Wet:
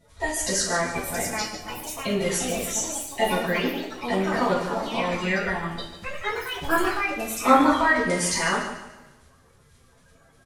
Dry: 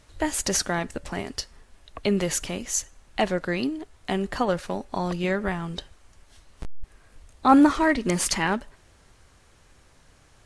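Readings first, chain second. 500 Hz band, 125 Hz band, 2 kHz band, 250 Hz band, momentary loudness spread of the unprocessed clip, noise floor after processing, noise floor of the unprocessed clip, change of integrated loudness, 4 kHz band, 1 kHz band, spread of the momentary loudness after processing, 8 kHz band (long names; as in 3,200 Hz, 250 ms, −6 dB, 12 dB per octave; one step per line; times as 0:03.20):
+2.5 dB, −1.0 dB, +5.5 dB, −2.5 dB, 15 LU, −57 dBFS, −57 dBFS, +0.5 dB, +2.5 dB, +3.0 dB, 12 LU, +2.0 dB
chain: spectral magnitudes quantised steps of 30 dB
on a send: repeating echo 146 ms, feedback 35%, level −10 dB
on the sum: coupled-rooms reverb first 0.45 s, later 1.8 s, from −25 dB, DRR −9.5 dB
delay with pitch and tempo change per echo 770 ms, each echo +4 semitones, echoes 3, each echo −6 dB
level −8 dB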